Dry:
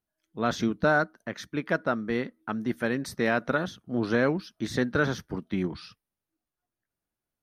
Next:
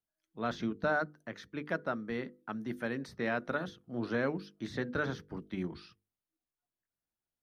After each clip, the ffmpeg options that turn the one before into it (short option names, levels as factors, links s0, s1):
-filter_complex "[0:a]bandreject=f=50:t=h:w=6,bandreject=f=100:t=h:w=6,bandreject=f=150:t=h:w=6,bandreject=f=200:t=h:w=6,bandreject=f=250:t=h:w=6,bandreject=f=300:t=h:w=6,bandreject=f=350:t=h:w=6,bandreject=f=400:t=h:w=6,bandreject=f=450:t=h:w=6,bandreject=f=500:t=h:w=6,acrossover=split=130|4600[s0][s1][s2];[s2]acompressor=threshold=0.00158:ratio=6[s3];[s0][s1][s3]amix=inputs=3:normalize=0,volume=0.422"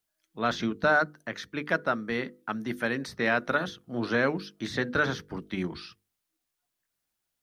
-af "tiltshelf=f=970:g=-3.5,volume=2.51"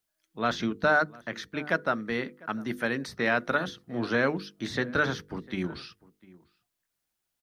-filter_complex "[0:a]asplit=2[s0][s1];[s1]adelay=699.7,volume=0.0794,highshelf=f=4000:g=-15.7[s2];[s0][s2]amix=inputs=2:normalize=0"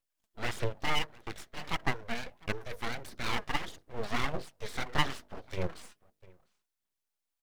-af "aphaser=in_gain=1:out_gain=1:delay=4.9:decay=0.59:speed=1.6:type=sinusoidal,aeval=exprs='abs(val(0))':c=same,volume=0.501"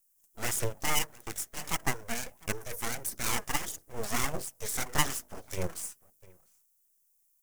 -af "aexciter=amount=9.5:drive=3:freq=5800"